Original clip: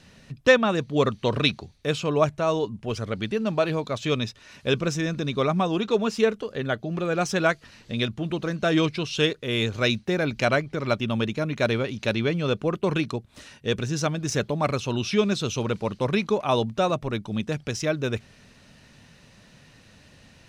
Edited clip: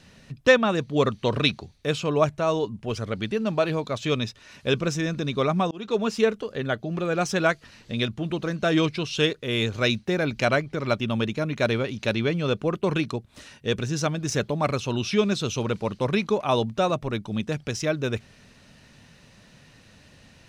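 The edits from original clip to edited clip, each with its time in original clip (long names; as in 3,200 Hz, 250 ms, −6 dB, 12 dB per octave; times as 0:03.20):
0:05.71–0:06.12: fade in equal-power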